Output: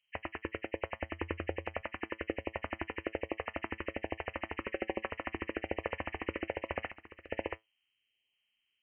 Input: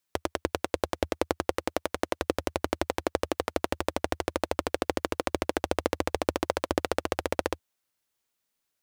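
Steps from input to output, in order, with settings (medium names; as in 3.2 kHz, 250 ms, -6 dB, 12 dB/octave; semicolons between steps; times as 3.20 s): knee-point frequency compression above 1.7 kHz 4:1; 1.07–1.81 s: peaking EQ 85 Hz +11.5 dB 0.35 oct; 4.60–5.08 s: comb 5.3 ms, depth 54%; 6.88–7.29 s: compression 6:1, threshold -39 dBFS, peak gain reduction 16 dB; LFO notch saw up 1.2 Hz 260–1600 Hz; feedback comb 110 Hz, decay 0.16 s, harmonics all, mix 40%; trim -4.5 dB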